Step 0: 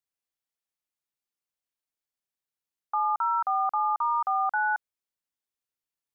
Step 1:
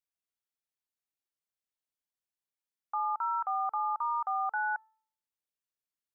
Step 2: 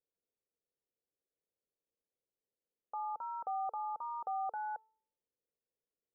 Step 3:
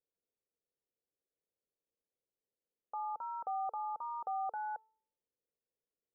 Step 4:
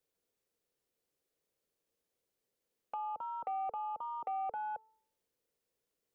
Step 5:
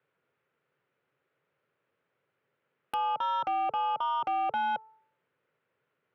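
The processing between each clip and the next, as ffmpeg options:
-af "bandreject=f=439.1:t=h:w=4,bandreject=f=878.2:t=h:w=4,bandreject=f=1317.3:t=h:w=4,bandreject=f=1756.4:t=h:w=4,volume=0.531"
-af "lowpass=f=480:t=q:w=4.3,volume=1.19"
-af anull
-filter_complex "[0:a]acrossover=split=160|580[s0][s1][s2];[s2]acompressor=threshold=0.00355:ratio=6[s3];[s0][s1][s3]amix=inputs=3:normalize=0,asoftclip=type=tanh:threshold=0.0158,volume=2.51"
-af "highpass=f=110:w=0.5412,highpass=f=110:w=1.3066,equalizer=f=140:t=q:w=4:g=4,equalizer=f=210:t=q:w=4:g=-8,equalizer=f=310:t=q:w=4:g=-7,equalizer=f=470:t=q:w=4:g=-6,equalizer=f=720:t=q:w=4:g=-4,equalizer=f=1400:t=q:w=4:g=6,lowpass=f=2500:w=0.5412,lowpass=f=2500:w=1.3066,aeval=exprs='0.0376*(cos(1*acos(clip(val(0)/0.0376,-1,1)))-cos(1*PI/2))+0.00106*(cos(2*acos(clip(val(0)/0.0376,-1,1)))-cos(2*PI/2))+0.00944*(cos(5*acos(clip(val(0)/0.0376,-1,1)))-cos(5*PI/2))':c=same,aeval=exprs='(mod(39.8*val(0)+1,2)-1)/39.8':c=same,volume=2.11"

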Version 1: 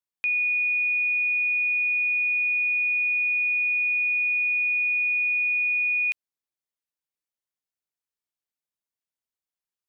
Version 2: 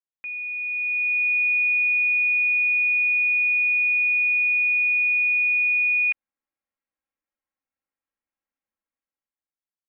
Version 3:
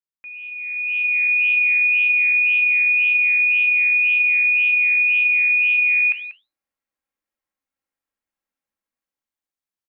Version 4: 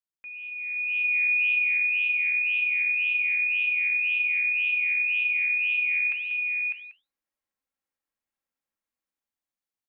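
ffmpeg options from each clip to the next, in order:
-af "lowpass=f=2300:w=0.5412,lowpass=f=2300:w=1.3066,aecho=1:1:3.7:0.65,dynaudnorm=f=140:g=13:m=3.76,volume=0.398"
-af "flanger=delay=8.2:depth=6.1:regen=-77:speed=1.9:shape=sinusoidal,aecho=1:1:189:0.2,dynaudnorm=f=520:g=3:m=2.24"
-af "aecho=1:1:601:0.447,volume=0.631"

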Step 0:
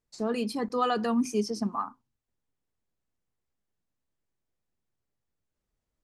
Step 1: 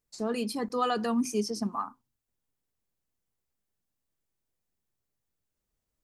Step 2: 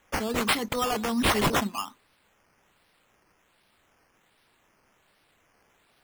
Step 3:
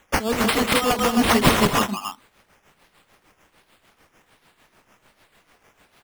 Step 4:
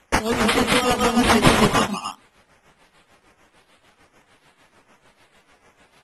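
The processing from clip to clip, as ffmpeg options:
-af "highshelf=f=7000:g=8.5,volume=0.841"
-af "aexciter=amount=8.9:drive=6.4:freq=4300,acrusher=samples=9:mix=1:aa=0.000001:lfo=1:lforange=5.4:lforate=1.3,asoftclip=type=hard:threshold=0.119"
-filter_complex "[0:a]asplit=2[s0][s1];[s1]aecho=0:1:188|267:0.562|0.562[s2];[s0][s2]amix=inputs=2:normalize=0,tremolo=f=6.7:d=0.68,volume=2.66"
-ar 48000 -c:a aac -b:a 32k

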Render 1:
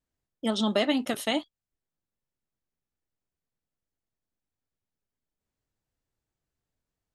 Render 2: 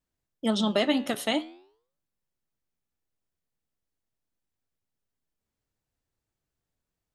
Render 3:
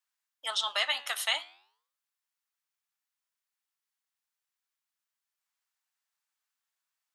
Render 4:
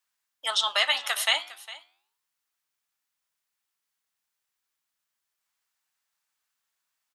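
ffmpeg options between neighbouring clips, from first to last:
-af "flanger=delay=5.4:depth=8.8:regen=89:speed=0.44:shape=sinusoidal,volume=1.78"
-af "highpass=f=970:w=0.5412,highpass=f=970:w=1.3066,volume=1.33"
-af "aecho=1:1:406:0.126,volume=1.88"

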